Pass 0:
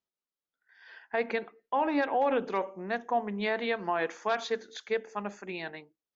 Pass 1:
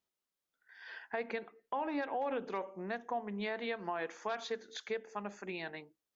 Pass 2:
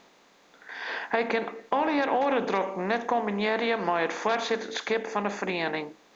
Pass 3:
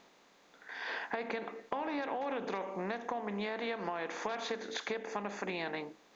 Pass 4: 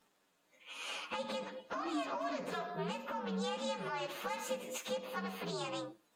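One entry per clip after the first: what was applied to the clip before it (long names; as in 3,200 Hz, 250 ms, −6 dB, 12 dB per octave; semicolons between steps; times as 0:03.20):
downward compressor 2 to 1, threshold −46 dBFS, peak gain reduction 12.5 dB; level +3 dB
compressor on every frequency bin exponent 0.6; level +8.5 dB
downward compressor, threshold −28 dBFS, peak gain reduction 8 dB; level −5 dB
partials spread apart or drawn together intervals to 124%; noise reduction from a noise print of the clip's start 8 dB; level +1.5 dB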